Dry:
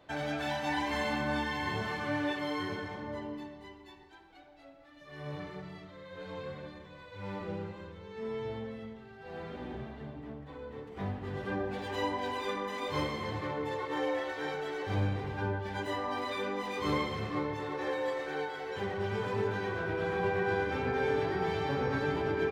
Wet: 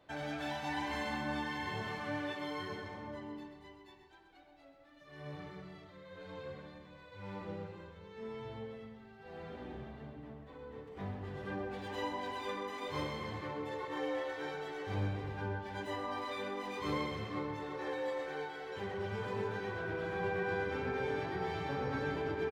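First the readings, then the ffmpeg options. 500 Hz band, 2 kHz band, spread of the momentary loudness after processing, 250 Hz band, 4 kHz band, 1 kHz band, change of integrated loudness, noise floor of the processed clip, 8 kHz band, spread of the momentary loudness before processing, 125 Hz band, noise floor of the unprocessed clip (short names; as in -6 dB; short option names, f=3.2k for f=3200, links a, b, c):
-5.5 dB, -5.0 dB, 14 LU, -5.0 dB, -5.0 dB, -5.0 dB, -5.0 dB, -59 dBFS, -5.0 dB, 14 LU, -5.0 dB, -54 dBFS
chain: -af "aecho=1:1:128:0.355,volume=-5.5dB"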